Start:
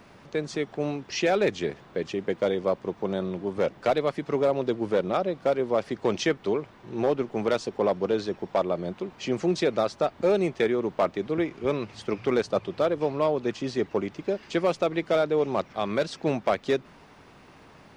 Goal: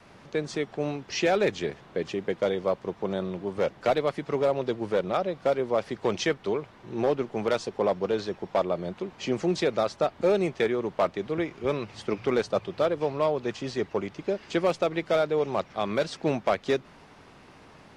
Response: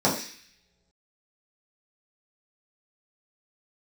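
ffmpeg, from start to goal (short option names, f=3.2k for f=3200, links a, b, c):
-af "adynamicequalizer=threshold=0.0141:dfrequency=280:dqfactor=1.4:tfrequency=280:tqfactor=1.4:attack=5:release=100:ratio=0.375:range=2.5:mode=cutabove:tftype=bell" -ar 48000 -c:a aac -b:a 64k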